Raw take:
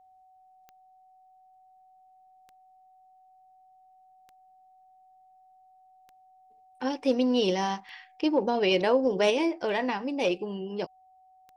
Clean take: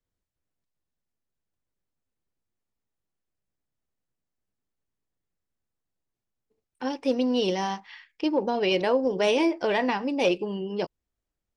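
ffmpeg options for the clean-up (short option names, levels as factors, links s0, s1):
-af "adeclick=t=4,bandreject=f=750:w=30,asetnsamples=n=441:p=0,asendcmd='9.3 volume volume 3.5dB',volume=1"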